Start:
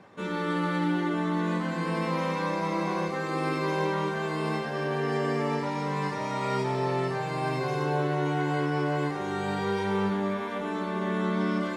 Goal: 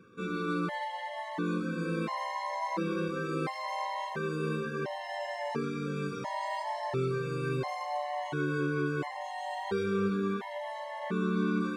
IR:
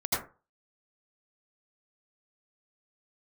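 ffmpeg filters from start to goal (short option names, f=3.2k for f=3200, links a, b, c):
-filter_complex "[0:a]asplit=2[a][b];[1:a]atrim=start_sample=2205[c];[b][c]afir=irnorm=-1:irlink=0,volume=-21.5dB[d];[a][d]amix=inputs=2:normalize=0,afftfilt=real='re*gt(sin(2*PI*0.72*pts/sr)*(1-2*mod(floor(b*sr/1024/550),2)),0)':imag='im*gt(sin(2*PI*0.72*pts/sr)*(1-2*mod(floor(b*sr/1024/550),2)),0)':win_size=1024:overlap=0.75,volume=-2.5dB"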